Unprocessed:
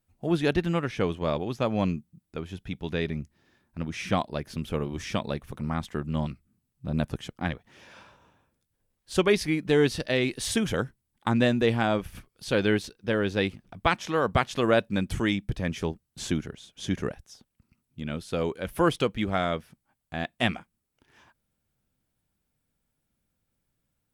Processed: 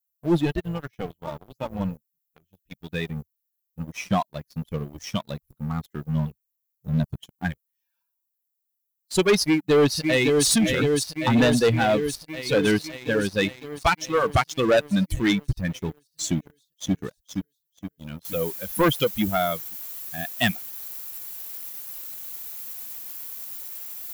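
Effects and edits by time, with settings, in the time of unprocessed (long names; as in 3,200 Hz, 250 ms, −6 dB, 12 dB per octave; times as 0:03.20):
0:00.45–0:02.72: amplitude modulation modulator 290 Hz, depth 75%
0:09.39–0:10.47: delay throw 560 ms, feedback 85%, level −3.5 dB
0:16.39–0:16.94: delay throw 470 ms, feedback 70%, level −3.5 dB
0:18.25: noise floor change −57 dB −43 dB
whole clip: spectral dynamics exaggerated over time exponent 2; high-shelf EQ 5,500 Hz +5.5 dB; leveller curve on the samples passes 3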